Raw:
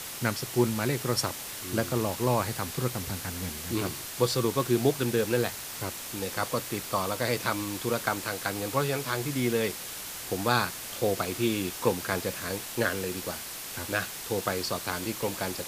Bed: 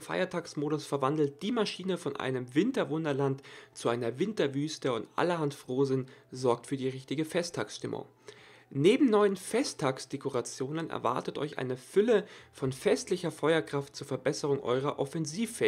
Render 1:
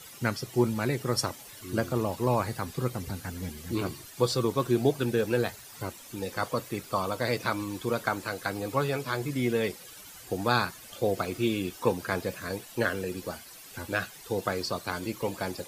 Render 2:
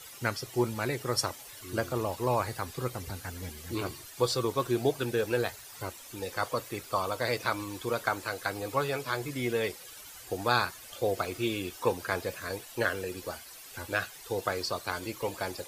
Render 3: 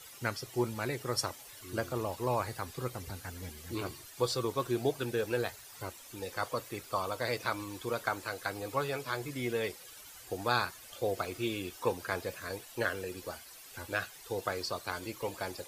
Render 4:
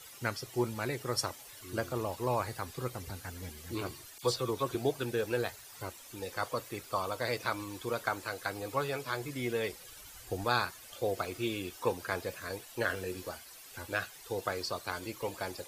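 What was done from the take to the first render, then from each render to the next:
noise reduction 13 dB, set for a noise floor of -39 dBFS
peaking EQ 190 Hz -9 dB 1.3 oct
trim -3.5 dB
4.18–4.75 s: phase dispersion lows, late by 47 ms, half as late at 2.5 kHz; 9.72–10.45 s: bass shelf 110 Hz +11.5 dB; 12.87–13.29 s: doubling 22 ms -6 dB

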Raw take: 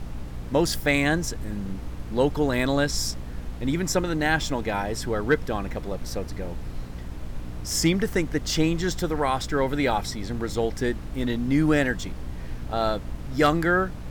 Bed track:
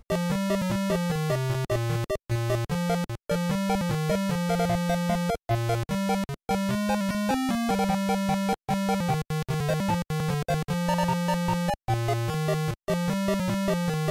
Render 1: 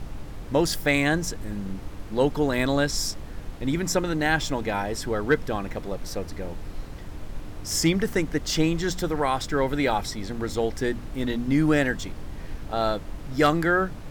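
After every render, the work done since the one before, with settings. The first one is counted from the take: de-hum 60 Hz, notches 4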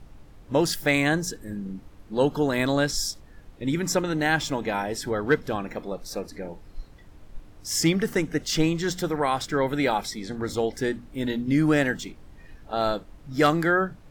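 noise print and reduce 12 dB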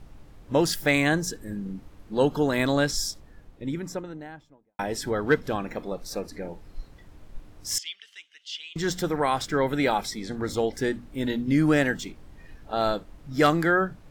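2.84–4.79 s: studio fade out; 7.78–8.76 s: ladder band-pass 3.3 kHz, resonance 70%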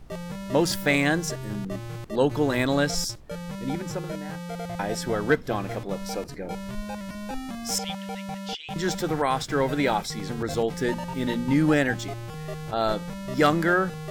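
add bed track -9 dB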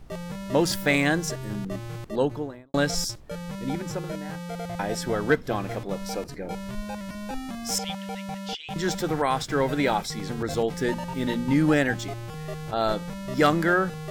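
2.01–2.74 s: studio fade out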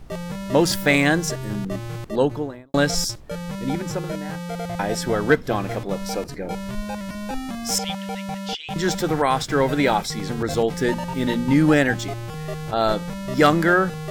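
trim +4.5 dB

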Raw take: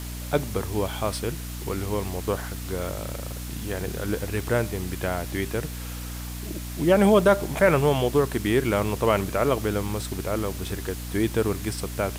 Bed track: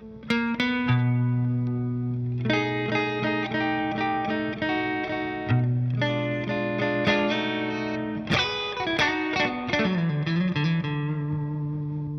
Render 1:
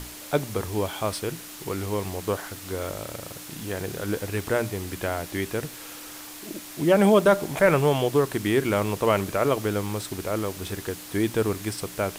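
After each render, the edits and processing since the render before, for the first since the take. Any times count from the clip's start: hum notches 60/120/180/240 Hz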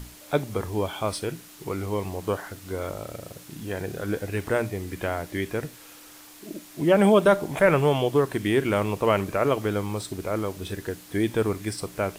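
noise print and reduce 7 dB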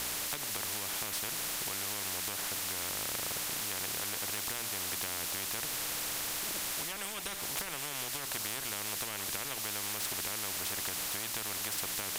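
compression, threshold -30 dBFS, peak gain reduction 15.5 dB; spectrum-flattening compressor 10:1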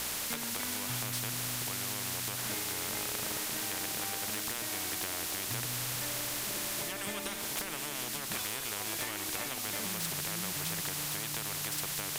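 add bed track -20 dB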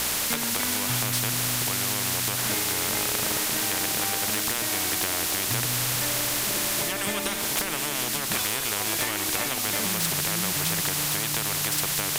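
trim +9.5 dB

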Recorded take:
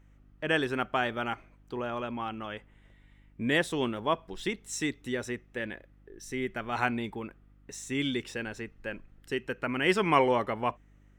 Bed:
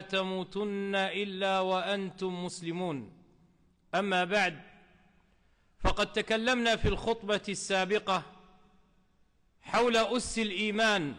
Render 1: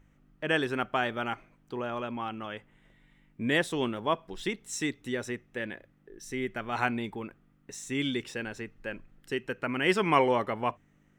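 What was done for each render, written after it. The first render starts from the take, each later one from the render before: de-hum 50 Hz, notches 2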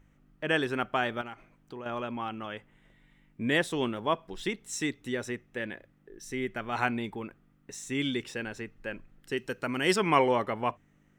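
1.21–1.86 s: compression 3:1, threshold -40 dBFS; 9.37–9.96 s: resonant high shelf 3.4 kHz +7.5 dB, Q 1.5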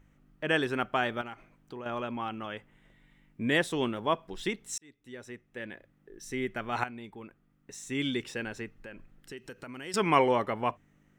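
4.78–6.27 s: fade in; 6.84–8.19 s: fade in, from -13.5 dB; 8.79–9.94 s: compression 3:1, threshold -43 dBFS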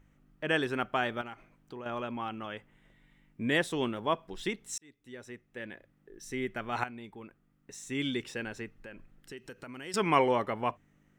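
trim -1.5 dB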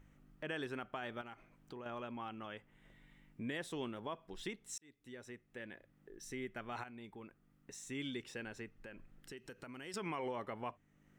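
peak limiter -21 dBFS, peak gain reduction 9.5 dB; compression 1.5:1, threshold -57 dBFS, peak gain reduction 11 dB

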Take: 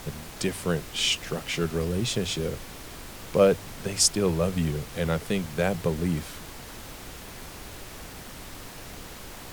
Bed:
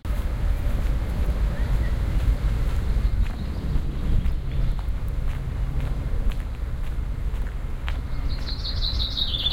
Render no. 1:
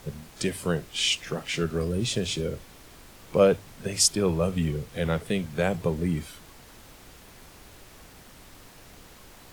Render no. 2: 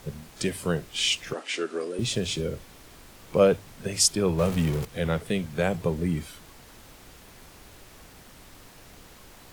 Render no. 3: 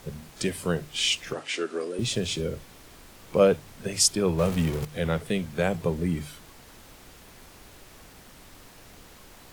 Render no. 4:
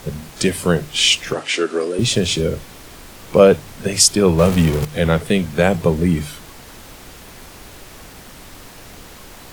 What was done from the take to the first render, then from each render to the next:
noise print and reduce 8 dB
1.33–1.99 s: elliptic band-pass 290–9200 Hz; 4.38–4.85 s: jump at every zero crossing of -30 dBFS
hum notches 50/100/150 Hz
trim +10.5 dB; peak limiter -1 dBFS, peak gain reduction 3 dB

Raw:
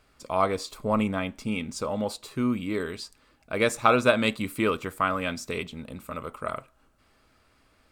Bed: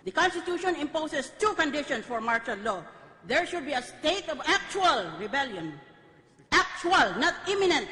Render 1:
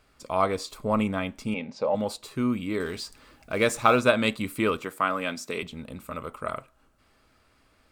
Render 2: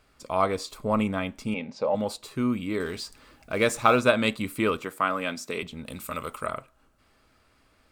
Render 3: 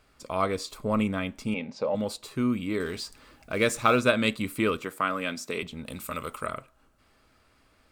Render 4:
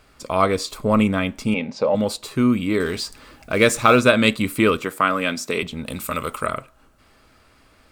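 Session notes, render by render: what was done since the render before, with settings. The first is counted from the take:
1.54–1.95 s: cabinet simulation 180–4400 Hz, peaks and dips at 330 Hz -7 dB, 550 Hz +9 dB, 800 Hz +7 dB, 1.3 kHz -8 dB, 3.3 kHz -7 dB; 2.80–4.00 s: companding laws mixed up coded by mu; 4.83–5.63 s: high-pass 190 Hz
5.86–6.47 s: treble shelf 2.1 kHz +11.5 dB
dynamic bell 820 Hz, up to -6 dB, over -39 dBFS, Q 1.7
trim +8.5 dB; peak limiter -1 dBFS, peak gain reduction 2.5 dB

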